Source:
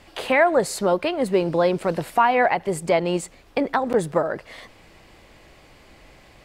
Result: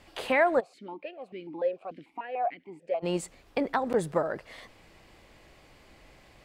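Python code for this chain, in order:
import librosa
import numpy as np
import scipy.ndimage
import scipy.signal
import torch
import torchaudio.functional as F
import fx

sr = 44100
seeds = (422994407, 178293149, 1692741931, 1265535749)

y = fx.vowel_held(x, sr, hz=6.8, at=(0.59, 3.02), fade=0.02)
y = F.gain(torch.from_numpy(y), -6.0).numpy()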